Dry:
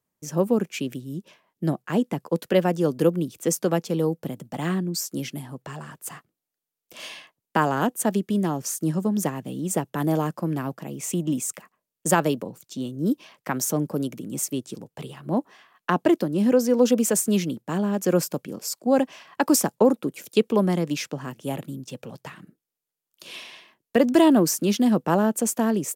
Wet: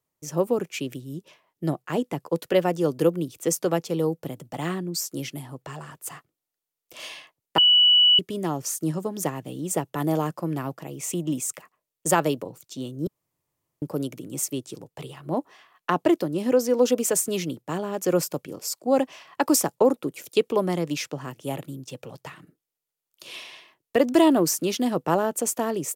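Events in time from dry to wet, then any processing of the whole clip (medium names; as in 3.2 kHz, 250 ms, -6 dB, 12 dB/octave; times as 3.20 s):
7.58–8.19 s: bleep 2.95 kHz -13 dBFS
13.07–13.82 s: room tone
whole clip: peaking EQ 210 Hz -12 dB 0.36 oct; band-stop 1.6 kHz, Q 15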